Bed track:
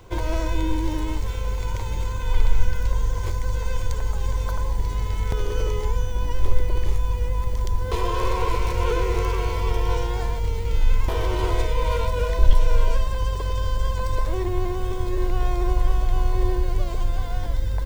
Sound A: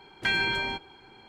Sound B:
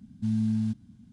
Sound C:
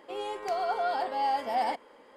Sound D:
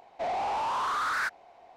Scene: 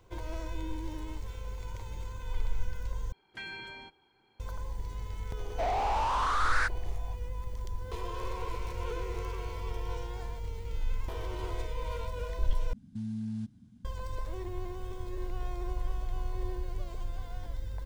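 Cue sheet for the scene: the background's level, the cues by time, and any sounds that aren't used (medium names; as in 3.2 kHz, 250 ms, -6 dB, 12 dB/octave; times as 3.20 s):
bed track -13.5 dB
3.12 s: replace with A -16 dB
5.39 s: add D + brick-wall FIR band-pass 190–11000 Hz
12.73 s: replace with B -4 dB + peak limiter -26 dBFS
not used: C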